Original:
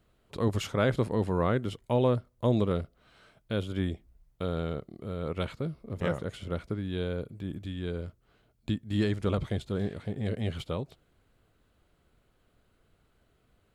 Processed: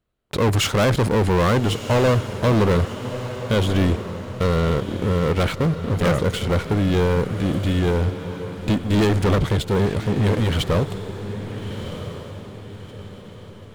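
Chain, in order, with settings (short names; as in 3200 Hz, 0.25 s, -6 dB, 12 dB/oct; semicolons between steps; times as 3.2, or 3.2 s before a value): sample leveller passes 5; diffused feedback echo 1.311 s, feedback 41%, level -10.5 dB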